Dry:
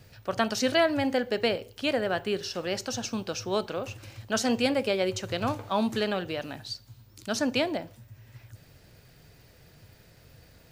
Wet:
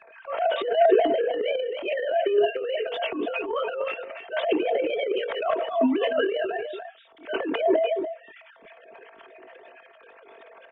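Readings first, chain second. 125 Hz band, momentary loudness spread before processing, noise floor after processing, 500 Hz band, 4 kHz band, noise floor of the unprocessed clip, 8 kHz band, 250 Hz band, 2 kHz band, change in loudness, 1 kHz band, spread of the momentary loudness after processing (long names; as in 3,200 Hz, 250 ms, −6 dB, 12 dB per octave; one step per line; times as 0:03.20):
below −20 dB, 12 LU, −53 dBFS, +6.5 dB, −3.0 dB, −57 dBFS, below −40 dB, −0.5 dB, +0.5 dB, +3.5 dB, +4.5 dB, 11 LU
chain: three sine waves on the formant tracks
comb filter 4.4 ms, depth 66%
in parallel at −1.5 dB: compressor whose output falls as the input rises −31 dBFS, ratio −1
on the sum: hollow resonant body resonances 350/660 Hz, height 14 dB, ringing for 45 ms
on a send: single-tap delay 289 ms −14 dB
on the sum: multi-voice chorus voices 2, 0.21 Hz, delay 21 ms, depth 2.4 ms
transient designer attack −10 dB, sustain +11 dB
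multiband upward and downward compressor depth 40%
level −5 dB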